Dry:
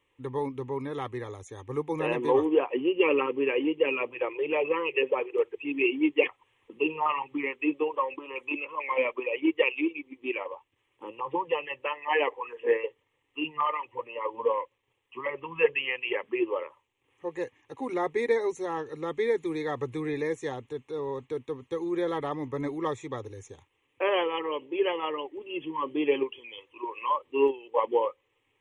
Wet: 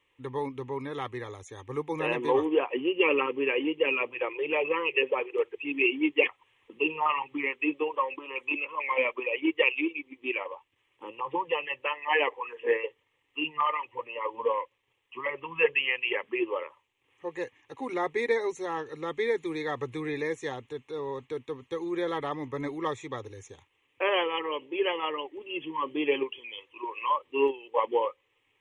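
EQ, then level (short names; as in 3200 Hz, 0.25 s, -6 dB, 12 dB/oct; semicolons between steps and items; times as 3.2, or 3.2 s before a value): tilt shelf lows -5 dB, about 1500 Hz; high shelf 5800 Hz -11.5 dB; +2.5 dB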